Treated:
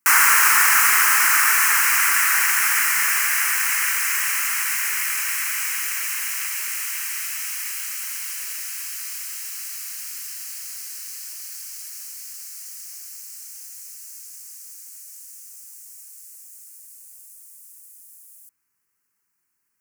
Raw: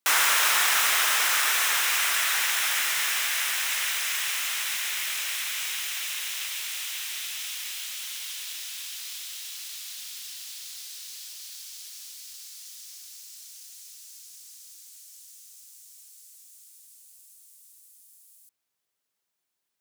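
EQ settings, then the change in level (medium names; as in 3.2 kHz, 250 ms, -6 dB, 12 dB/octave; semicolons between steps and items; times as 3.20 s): static phaser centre 1.5 kHz, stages 4; +9.0 dB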